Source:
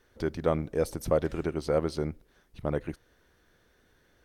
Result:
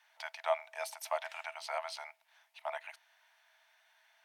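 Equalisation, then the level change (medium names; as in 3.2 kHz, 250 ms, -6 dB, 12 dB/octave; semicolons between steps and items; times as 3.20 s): rippled Chebyshev high-pass 630 Hz, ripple 9 dB; +6.0 dB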